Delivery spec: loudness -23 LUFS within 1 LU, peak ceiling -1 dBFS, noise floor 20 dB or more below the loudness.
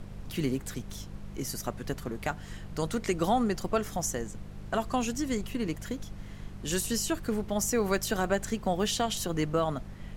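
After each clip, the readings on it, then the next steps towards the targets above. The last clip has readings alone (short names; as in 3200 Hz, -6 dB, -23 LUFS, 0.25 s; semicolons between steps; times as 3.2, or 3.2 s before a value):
hum 50 Hz; harmonics up to 200 Hz; hum level -43 dBFS; noise floor -44 dBFS; noise floor target -52 dBFS; loudness -31.5 LUFS; peak -15.5 dBFS; loudness target -23.0 LUFS
-> de-hum 50 Hz, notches 4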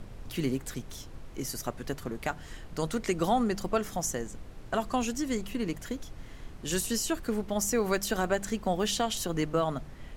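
hum none; noise floor -46 dBFS; noise floor target -52 dBFS
-> noise print and reduce 6 dB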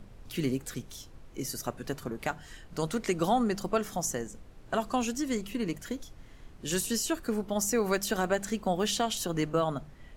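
noise floor -51 dBFS; noise floor target -52 dBFS
-> noise print and reduce 6 dB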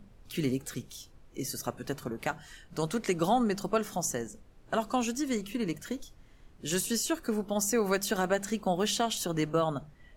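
noise floor -57 dBFS; loudness -31.5 LUFS; peak -15.5 dBFS; loudness target -23.0 LUFS
-> gain +8.5 dB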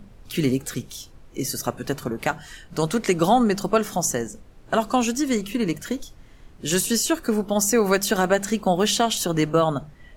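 loudness -23.0 LUFS; peak -7.0 dBFS; noise floor -48 dBFS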